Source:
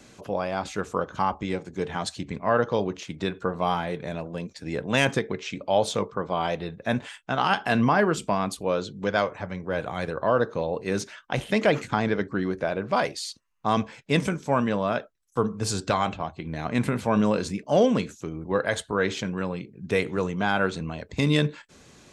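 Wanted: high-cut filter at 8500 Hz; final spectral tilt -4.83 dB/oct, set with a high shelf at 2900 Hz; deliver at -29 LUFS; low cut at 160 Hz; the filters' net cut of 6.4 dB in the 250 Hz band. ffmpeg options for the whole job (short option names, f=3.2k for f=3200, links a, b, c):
-af "highpass=160,lowpass=8.5k,equalizer=f=250:t=o:g=-7,highshelf=f=2.9k:g=-3"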